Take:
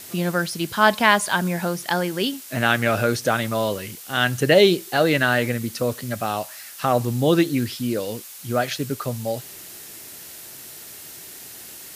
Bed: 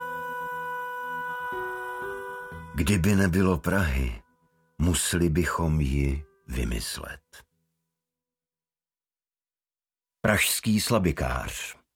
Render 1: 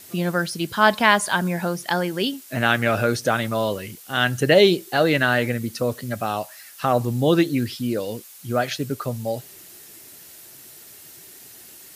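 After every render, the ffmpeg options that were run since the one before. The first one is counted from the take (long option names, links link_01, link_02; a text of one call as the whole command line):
ffmpeg -i in.wav -af "afftdn=noise_reduction=6:noise_floor=-40" out.wav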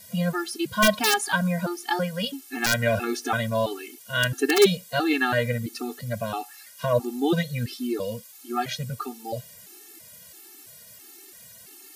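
ffmpeg -i in.wav -af "aeval=exprs='(mod(1.78*val(0)+1,2)-1)/1.78':channel_layout=same,afftfilt=real='re*gt(sin(2*PI*1.5*pts/sr)*(1-2*mod(floor(b*sr/1024/230),2)),0)':imag='im*gt(sin(2*PI*1.5*pts/sr)*(1-2*mod(floor(b*sr/1024/230),2)),0)':win_size=1024:overlap=0.75" out.wav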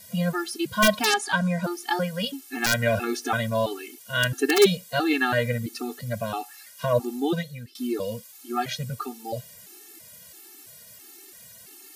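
ffmpeg -i in.wav -filter_complex "[0:a]asettb=1/sr,asplit=3[link_01][link_02][link_03];[link_01]atrim=end=1.054[link_04];[link_02]atrim=start=1.05:end=1.64,asetpts=PTS-STARTPTS,afade=type=in:duration=0.004:curve=qsin,afade=type=out:start_time=0.586:duration=0.004:curve=qsin,lowpass=8500[link_05];[link_03]atrim=start=1.636[link_06];[link_04][link_05]acrossfade=duration=0.004:curve1=hsin:curve2=qsin[link_07];[link_07][link_06]acrossfade=duration=0.004:curve1=qsin:curve2=hsin,asplit=2[link_08][link_09];[link_08]atrim=end=7.75,asetpts=PTS-STARTPTS,afade=type=out:start_time=7.13:duration=0.62:silence=0.0841395[link_10];[link_09]atrim=start=7.75,asetpts=PTS-STARTPTS,afade=type=in:duration=0.004:curve=hsin:silence=0.0841395[link_11];[link_10][link_11]concat=n=2:v=0:a=1" out.wav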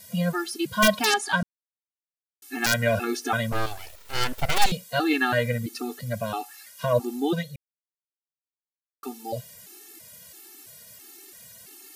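ffmpeg -i in.wav -filter_complex "[0:a]asettb=1/sr,asplit=3[link_01][link_02][link_03];[link_01]atrim=end=3.524[link_04];[link_02]atrim=start=3.52:end=4.72,asetpts=PTS-STARTPTS,afade=type=in:duration=0.004:curve=qsin,afade=type=out:start_time=1.196:duration=0.004:curve=qsin,aeval=exprs='abs(val(0))':channel_layout=same[link_05];[link_03]atrim=start=4.716[link_06];[link_04][link_05]acrossfade=duration=0.004:curve1=hsin:curve2=qsin[link_07];[link_07][link_06]acrossfade=duration=0.004:curve1=qsin:curve2=hsin,asplit=5[link_08][link_09][link_10][link_11][link_12];[link_08]atrim=end=1.43,asetpts=PTS-STARTPTS,afade=type=out:start_time=1.426:duration=0.004:curve=hsin[link_13];[link_09]atrim=start=1.43:end=2.42,asetpts=PTS-STARTPTS,volume=0[link_14];[link_10]atrim=start=2.42:end=7.56,asetpts=PTS-STARTPTS,afade=type=in:duration=0.004:curve=hsin,afade=type=out:start_time=5.136:duration=0.004:curve=hsin[link_15];[link_11]atrim=start=7.56:end=9.03,asetpts=PTS-STARTPTS,volume=0[link_16];[link_12]atrim=start=9.03,asetpts=PTS-STARTPTS,afade=type=in:duration=0.004:curve=hsin[link_17];[link_13][link_14][link_15][link_16][link_17]concat=n=5:v=0:a=1" out.wav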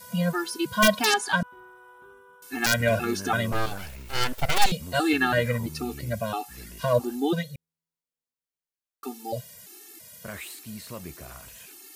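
ffmpeg -i in.wav -i bed.wav -filter_complex "[1:a]volume=-16.5dB[link_01];[0:a][link_01]amix=inputs=2:normalize=0" out.wav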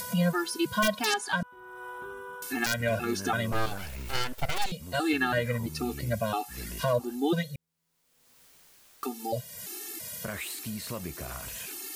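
ffmpeg -i in.wav -af "acompressor=mode=upward:threshold=-30dB:ratio=2.5,alimiter=limit=-16dB:level=0:latency=1:release=491" out.wav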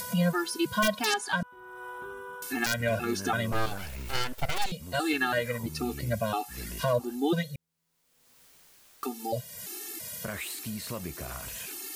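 ffmpeg -i in.wav -filter_complex "[0:a]asettb=1/sr,asplit=3[link_01][link_02][link_03];[link_01]atrim=end=4.994[link_04];[link_02]atrim=start=4.99:end=5.63,asetpts=PTS-STARTPTS,afade=type=in:duration=0.004:curve=qsin,afade=type=out:start_time=0.636:duration=0.004:curve=qsin,bass=frequency=250:gain=-7,treble=frequency=4000:gain=3[link_05];[link_03]atrim=start=5.626[link_06];[link_04][link_05]acrossfade=duration=0.004:curve1=hsin:curve2=qsin[link_07];[link_07][link_06]acrossfade=duration=0.004:curve1=qsin:curve2=hsin" out.wav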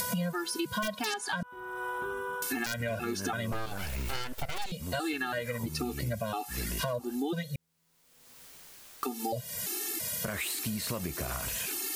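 ffmpeg -i in.wav -filter_complex "[0:a]asplit=2[link_01][link_02];[link_02]alimiter=level_in=1.5dB:limit=-24dB:level=0:latency=1:release=159,volume=-1.5dB,volume=0dB[link_03];[link_01][link_03]amix=inputs=2:normalize=0,acompressor=threshold=-30dB:ratio=6" out.wav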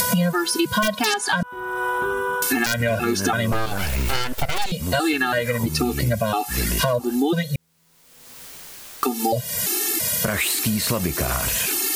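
ffmpeg -i in.wav -af "volume=12dB" out.wav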